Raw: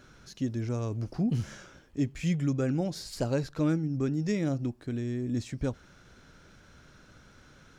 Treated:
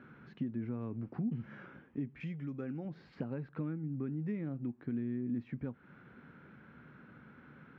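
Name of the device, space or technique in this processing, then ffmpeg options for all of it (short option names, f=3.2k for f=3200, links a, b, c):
bass amplifier: -filter_complex "[0:a]acompressor=threshold=-38dB:ratio=5,highpass=77,highpass=75,equalizer=f=91:t=q:w=4:g=-9,equalizer=f=150:t=q:w=4:g=4,equalizer=f=230:t=q:w=4:g=7,equalizer=f=620:t=q:w=4:g=-6,lowpass=f=2.3k:w=0.5412,lowpass=f=2.3k:w=1.3066,asettb=1/sr,asplit=3[a][b][c];[a]atrim=end=2.204[d];[b]atrim=start=2.2:end=2.85,asetpts=PTS-STARTPTS,afade=t=in:d=0.004:c=qsin,afade=t=out:st=0.646:d=0.004:c=qsin,bass=f=250:g=-5,treble=f=4k:g=14[e];[c]atrim=start=2.846[f];[d][e]acrossfade=d=0.004:c1=hsin:c2=qsin[g];[g][f]acrossfade=d=0.004:c1=qsin:c2=hsin"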